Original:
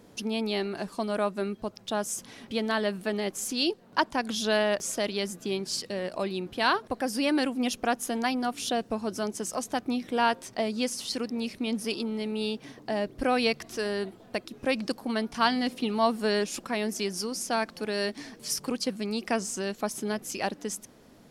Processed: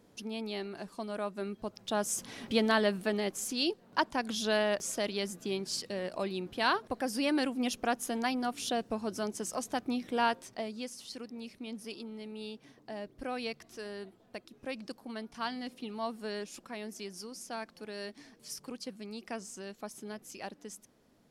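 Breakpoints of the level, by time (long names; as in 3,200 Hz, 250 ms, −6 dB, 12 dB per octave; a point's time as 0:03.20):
0:01.22 −8.5 dB
0:02.47 +2.5 dB
0:03.48 −4 dB
0:10.24 −4 dB
0:10.88 −12 dB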